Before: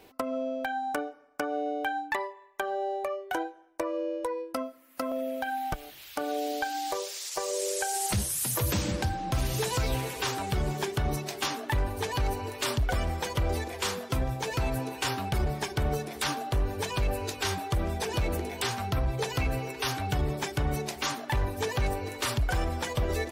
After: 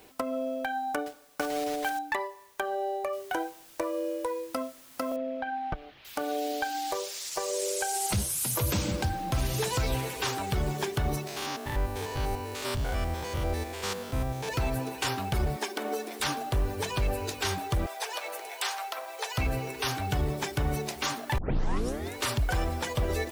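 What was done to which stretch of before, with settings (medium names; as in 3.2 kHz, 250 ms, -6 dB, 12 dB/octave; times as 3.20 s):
1.06–1.99 s: block-companded coder 3-bit
3.13 s: noise floor step -62 dB -54 dB
5.16–6.05 s: distance through air 310 m
7.66–9.04 s: band-stop 1.8 kHz
11.27–14.49 s: spectrogram pixelated in time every 100 ms
15.56–16.20 s: brick-wall FIR high-pass 200 Hz
17.86–19.38 s: high-pass 590 Hz 24 dB/octave
21.38 s: tape start 0.77 s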